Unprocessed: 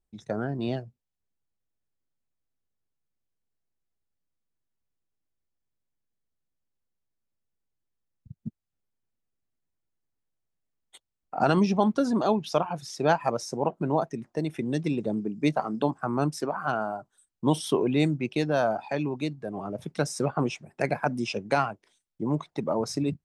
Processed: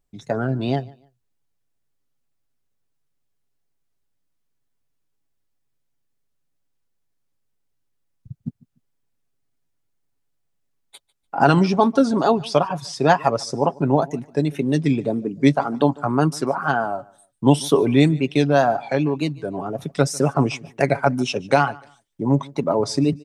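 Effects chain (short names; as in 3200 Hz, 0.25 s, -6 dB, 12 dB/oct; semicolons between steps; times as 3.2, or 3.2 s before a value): wow and flutter 110 cents; comb 7.2 ms, depth 39%; feedback echo 0.147 s, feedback 26%, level -23.5 dB; gain +6.5 dB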